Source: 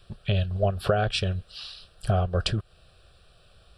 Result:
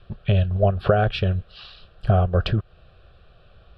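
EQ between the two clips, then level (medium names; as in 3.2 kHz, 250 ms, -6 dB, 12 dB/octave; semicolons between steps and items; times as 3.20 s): distance through air 350 m; +6.0 dB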